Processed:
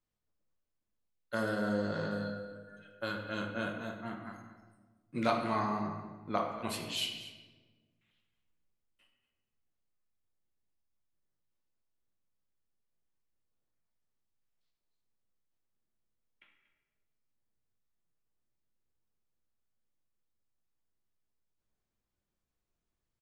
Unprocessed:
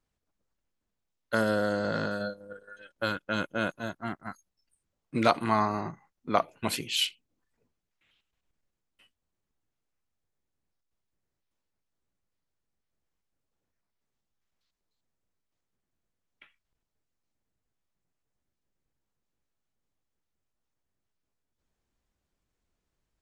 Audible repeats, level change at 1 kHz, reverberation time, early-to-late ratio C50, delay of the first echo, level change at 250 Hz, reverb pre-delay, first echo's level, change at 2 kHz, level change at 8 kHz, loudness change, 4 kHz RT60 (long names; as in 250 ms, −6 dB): 1, −6.0 dB, 1.3 s, 4.5 dB, 236 ms, −4.0 dB, 6 ms, −15.5 dB, −6.5 dB, −7.5 dB, −6.0 dB, 0.90 s